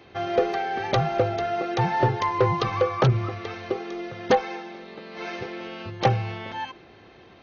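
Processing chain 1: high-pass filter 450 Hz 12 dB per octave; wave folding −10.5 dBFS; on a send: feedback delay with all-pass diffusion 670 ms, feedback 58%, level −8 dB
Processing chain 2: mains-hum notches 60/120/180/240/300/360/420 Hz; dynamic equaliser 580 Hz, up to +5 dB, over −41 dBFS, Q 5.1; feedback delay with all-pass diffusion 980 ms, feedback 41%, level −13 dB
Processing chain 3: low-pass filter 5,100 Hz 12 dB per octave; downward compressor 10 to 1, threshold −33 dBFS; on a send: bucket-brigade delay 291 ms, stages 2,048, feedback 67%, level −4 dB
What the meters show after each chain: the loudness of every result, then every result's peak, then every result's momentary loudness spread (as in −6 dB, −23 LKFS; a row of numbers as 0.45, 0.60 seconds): −27.5, −25.0, −35.5 LKFS; −9.5, −7.0, −20.0 dBFS; 11, 13, 2 LU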